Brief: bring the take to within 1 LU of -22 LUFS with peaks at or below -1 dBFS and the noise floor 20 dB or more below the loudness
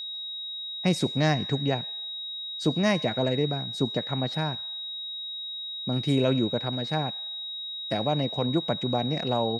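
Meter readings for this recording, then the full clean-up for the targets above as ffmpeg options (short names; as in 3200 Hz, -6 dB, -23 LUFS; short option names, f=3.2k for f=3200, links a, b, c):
steady tone 3800 Hz; tone level -33 dBFS; loudness -28.0 LUFS; peak -10.5 dBFS; loudness target -22.0 LUFS
-> -af "bandreject=f=3.8k:w=30"
-af "volume=6dB"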